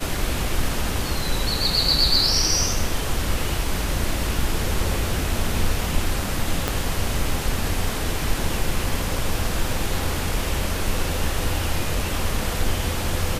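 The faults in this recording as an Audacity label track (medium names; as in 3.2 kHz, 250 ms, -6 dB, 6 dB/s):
6.680000	6.680000	pop -6 dBFS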